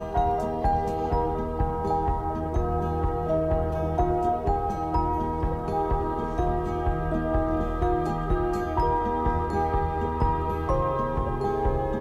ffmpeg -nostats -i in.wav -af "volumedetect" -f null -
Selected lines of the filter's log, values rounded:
mean_volume: -25.4 dB
max_volume: -11.2 dB